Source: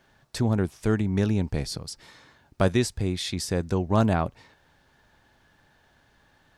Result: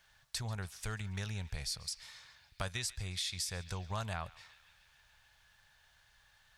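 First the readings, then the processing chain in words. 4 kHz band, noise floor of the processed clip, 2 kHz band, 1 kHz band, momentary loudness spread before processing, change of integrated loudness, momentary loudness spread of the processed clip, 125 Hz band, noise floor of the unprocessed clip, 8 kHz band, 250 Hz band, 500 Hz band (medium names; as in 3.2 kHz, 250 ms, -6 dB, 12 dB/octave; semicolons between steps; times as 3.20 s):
-4.5 dB, -68 dBFS, -7.5 dB, -13.0 dB, 11 LU, -13.5 dB, 13 LU, -14.0 dB, -63 dBFS, -3.5 dB, -24.0 dB, -21.0 dB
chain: amplifier tone stack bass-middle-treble 10-0-10; compression 2.5:1, threshold -38 dBFS, peak gain reduction 6.5 dB; band-passed feedback delay 140 ms, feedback 80%, band-pass 2.7 kHz, level -17 dB; trim +1.5 dB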